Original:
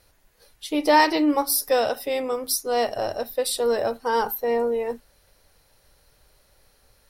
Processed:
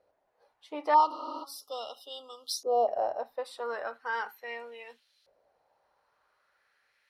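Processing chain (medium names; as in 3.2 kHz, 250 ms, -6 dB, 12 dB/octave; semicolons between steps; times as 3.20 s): 0.94–2.88 s: brick-wall FIR band-stop 1.4–2.8 kHz; LFO band-pass saw up 0.38 Hz 560–4000 Hz; 1.13–1.41 s: spectral replace 220–9500 Hz before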